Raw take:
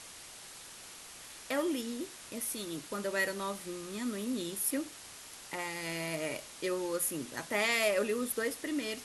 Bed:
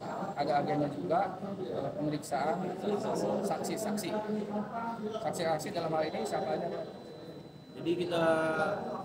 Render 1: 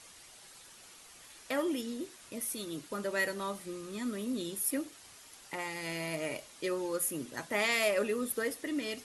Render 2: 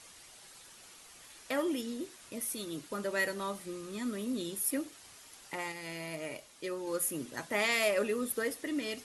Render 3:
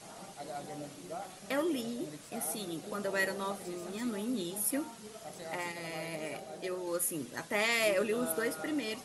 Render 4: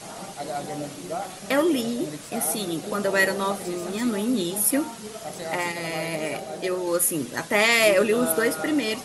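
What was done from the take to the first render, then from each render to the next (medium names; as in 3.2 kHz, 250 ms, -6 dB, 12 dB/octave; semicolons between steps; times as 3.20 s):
noise reduction 7 dB, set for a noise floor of -50 dBFS
5.72–6.87 s: gain -4 dB
add bed -12.5 dB
trim +11 dB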